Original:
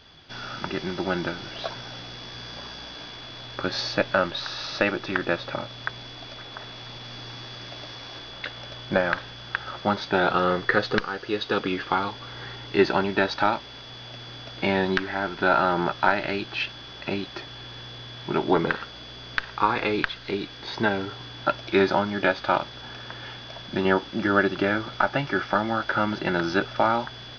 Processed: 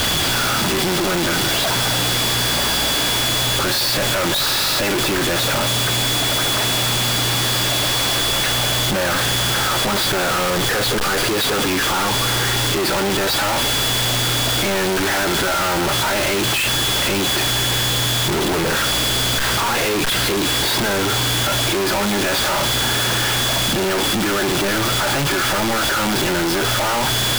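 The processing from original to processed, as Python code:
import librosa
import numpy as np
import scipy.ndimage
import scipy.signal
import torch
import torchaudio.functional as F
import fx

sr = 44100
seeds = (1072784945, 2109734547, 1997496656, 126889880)

y = np.sign(x) * np.sqrt(np.mean(np.square(x)))
y = y * 10.0 ** (8.5 / 20.0)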